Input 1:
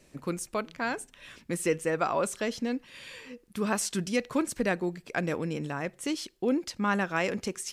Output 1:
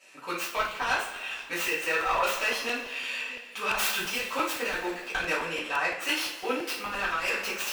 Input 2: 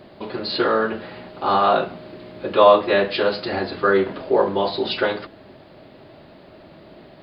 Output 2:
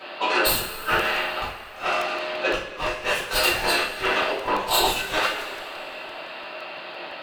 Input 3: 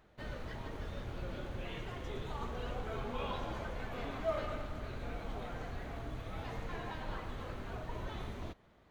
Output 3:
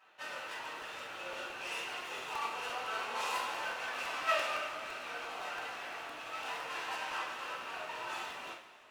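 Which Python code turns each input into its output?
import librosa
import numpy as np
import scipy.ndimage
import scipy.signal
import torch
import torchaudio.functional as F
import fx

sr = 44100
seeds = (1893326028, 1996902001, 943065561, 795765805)

p1 = fx.tracing_dist(x, sr, depth_ms=0.3)
p2 = scipy.signal.sosfilt(scipy.signal.butter(2, 1100.0, 'highpass', fs=sr, output='sos'), p1)
p3 = fx.tilt_eq(p2, sr, slope=-2.0)
p4 = fx.echo_feedback(p3, sr, ms=162, feedback_pct=45, wet_db=-21.5)
p5 = fx.schmitt(p4, sr, flips_db=-25.0)
p6 = p4 + (p5 * 10.0 ** (-8.0 / 20.0))
p7 = fx.peak_eq(p6, sr, hz=2700.0, db=10.0, octaves=0.24)
p8 = fx.over_compress(p7, sr, threshold_db=-35.0, ratio=-0.5)
p9 = fx.rev_double_slope(p8, sr, seeds[0], early_s=0.41, late_s=2.8, knee_db=-18, drr_db=-9.5)
y = fx.buffer_crackle(p9, sr, first_s=0.65, period_s=0.17, block=128, kind='repeat')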